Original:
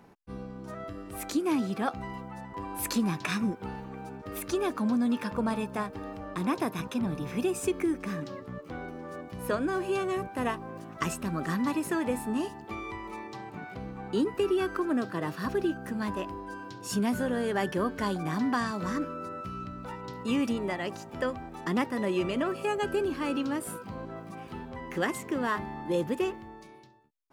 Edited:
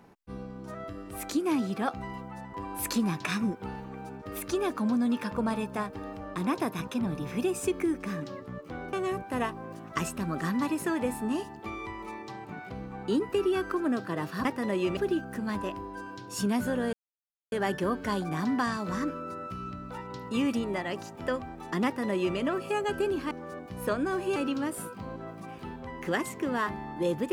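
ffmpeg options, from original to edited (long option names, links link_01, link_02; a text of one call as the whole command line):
ffmpeg -i in.wav -filter_complex "[0:a]asplit=7[link_01][link_02][link_03][link_04][link_05][link_06][link_07];[link_01]atrim=end=8.932[link_08];[link_02]atrim=start=9.978:end=15.502[link_09];[link_03]atrim=start=21.788:end=22.312[link_10];[link_04]atrim=start=15.498:end=17.46,asetpts=PTS-STARTPTS,afade=type=out:start_time=1.958:duration=0.004:curve=hsin,apad=pad_dur=0.59[link_11];[link_05]atrim=start=17.46:end=23.252,asetpts=PTS-STARTPTS,afade=type=in:duration=0.004:curve=hsin[link_12];[link_06]atrim=start=8.928:end=9.982[link_13];[link_07]atrim=start=23.248[link_14];[link_08][link_09]acrossfade=duration=0.004:curve1=hsin:curve2=hsin[link_15];[link_15][link_10]acrossfade=duration=0.004:curve1=hsin:curve2=hsin[link_16];[link_11][link_12]concat=n=2:v=0:a=1[link_17];[link_16][link_17]acrossfade=duration=0.004:curve1=hsin:curve2=hsin[link_18];[link_18][link_13]acrossfade=duration=0.004:curve1=hsin:curve2=hsin[link_19];[link_19][link_14]acrossfade=duration=0.004:curve1=hsin:curve2=hsin" out.wav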